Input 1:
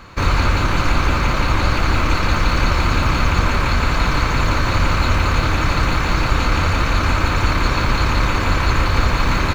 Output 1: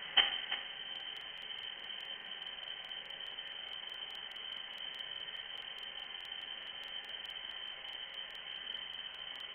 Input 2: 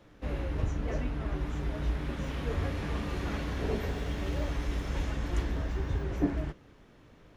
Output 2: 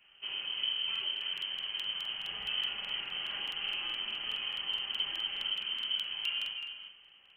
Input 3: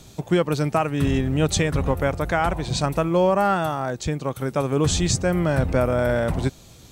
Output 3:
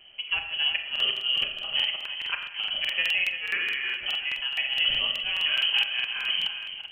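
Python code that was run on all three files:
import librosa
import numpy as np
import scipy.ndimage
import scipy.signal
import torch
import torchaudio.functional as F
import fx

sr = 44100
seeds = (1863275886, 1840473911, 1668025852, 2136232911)

y = fx.hum_notches(x, sr, base_hz=60, count=9)
y = fx.gate_flip(y, sr, shuts_db=-10.0, range_db=-26)
y = fx.notch_comb(y, sr, f0_hz=200.0)
y = y + 10.0 ** (-9.5 / 20.0) * np.pad(y, (int(341 * sr / 1000.0), 0))[:len(y)]
y = fx.rev_schroeder(y, sr, rt60_s=0.81, comb_ms=27, drr_db=5.0)
y = fx.freq_invert(y, sr, carrier_hz=3100)
y = fx.buffer_crackle(y, sr, first_s=0.91, period_s=0.21, block=2048, kind='repeat')
y = F.gain(torch.from_numpy(y), -4.5).numpy()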